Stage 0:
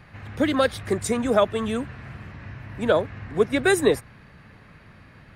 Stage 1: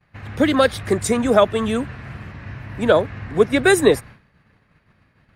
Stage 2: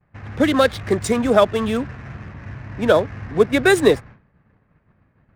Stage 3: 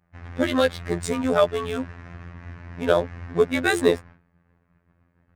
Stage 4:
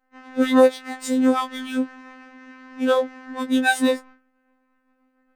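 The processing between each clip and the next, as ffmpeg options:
-af "agate=range=-33dB:threshold=-38dB:ratio=3:detection=peak,volume=5dB"
-af "adynamicsmooth=sensitivity=8:basefreq=1.5k"
-af "afftfilt=real='hypot(re,im)*cos(PI*b)':imag='0':win_size=2048:overlap=0.75,volume=-1.5dB"
-af "afftfilt=real='re*3.46*eq(mod(b,12),0)':imag='im*3.46*eq(mod(b,12),0)':win_size=2048:overlap=0.75,volume=-1dB"

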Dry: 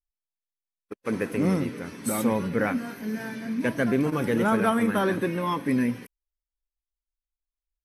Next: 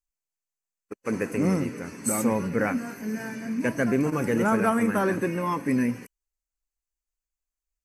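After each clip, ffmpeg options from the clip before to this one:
-af "superequalizer=13b=0.282:15b=2.24"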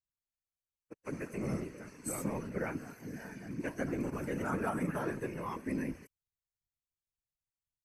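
-af "afftfilt=real='hypot(re,im)*cos(2*PI*random(0))':imag='hypot(re,im)*sin(2*PI*random(1))':win_size=512:overlap=0.75,volume=-6dB"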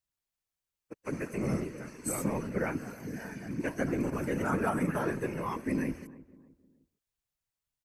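-filter_complex "[0:a]asplit=2[a][b];[b]adelay=308,lowpass=f=940:p=1,volume=-17.5dB,asplit=2[c][d];[d]adelay=308,lowpass=f=940:p=1,volume=0.38,asplit=2[e][f];[f]adelay=308,lowpass=f=940:p=1,volume=0.38[g];[a][c][e][g]amix=inputs=4:normalize=0,volume=4.5dB"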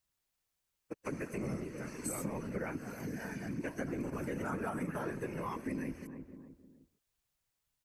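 -af "acompressor=threshold=-44dB:ratio=3,volume=5dB"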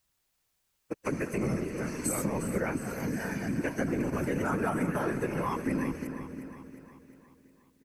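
-af "aecho=1:1:357|714|1071|1428|1785|2142:0.266|0.141|0.0747|0.0396|0.021|0.0111,volume=7.5dB"

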